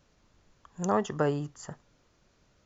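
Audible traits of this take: noise floor -68 dBFS; spectral tilt -5.0 dB/oct

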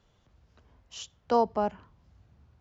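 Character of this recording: noise floor -68 dBFS; spectral tilt -4.0 dB/oct

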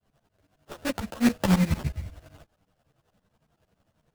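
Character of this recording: a buzz of ramps at a fixed pitch in blocks of 8 samples; tremolo saw up 11 Hz, depth 100%; aliases and images of a low sample rate 2200 Hz, jitter 20%; a shimmering, thickened sound

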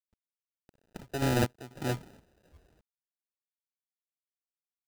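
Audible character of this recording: aliases and images of a low sample rate 1100 Hz, jitter 0%; random-step tremolo 4.1 Hz, depth 85%; a quantiser's noise floor 12-bit, dither none

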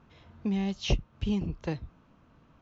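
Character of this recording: noise floor -62 dBFS; spectral tilt -6.0 dB/oct

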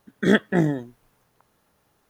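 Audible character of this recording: noise floor -68 dBFS; spectral tilt -5.5 dB/oct

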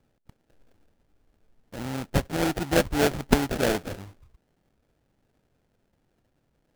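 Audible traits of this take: aliases and images of a low sample rate 1100 Hz, jitter 20%

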